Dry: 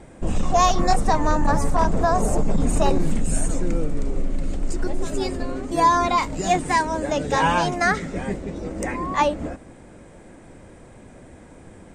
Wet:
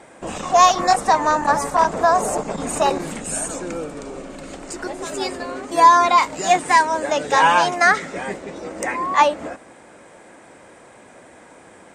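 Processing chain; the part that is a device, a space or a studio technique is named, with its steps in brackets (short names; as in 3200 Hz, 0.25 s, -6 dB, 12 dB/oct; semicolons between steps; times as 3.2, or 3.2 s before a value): filter by subtraction (in parallel: LPF 1000 Hz 12 dB/oct + phase invert); 3.32–4.44 on the sum: notch 2000 Hz, Q 9.3; gain +4.5 dB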